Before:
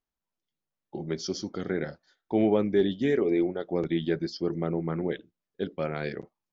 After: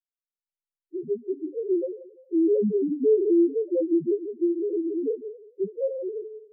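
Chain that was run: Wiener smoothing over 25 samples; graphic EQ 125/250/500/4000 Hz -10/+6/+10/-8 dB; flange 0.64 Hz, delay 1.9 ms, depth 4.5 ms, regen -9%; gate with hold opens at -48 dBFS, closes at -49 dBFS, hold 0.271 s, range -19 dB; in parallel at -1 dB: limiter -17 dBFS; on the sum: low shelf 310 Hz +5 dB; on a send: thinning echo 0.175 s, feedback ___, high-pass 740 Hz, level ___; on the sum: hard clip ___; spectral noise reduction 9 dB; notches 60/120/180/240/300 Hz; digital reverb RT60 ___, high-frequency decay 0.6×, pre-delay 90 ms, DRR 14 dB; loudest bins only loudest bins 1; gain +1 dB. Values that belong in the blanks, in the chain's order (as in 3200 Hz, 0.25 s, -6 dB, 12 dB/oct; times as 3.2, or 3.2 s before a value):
40%, -10.5 dB, -11.5 dBFS, 0.72 s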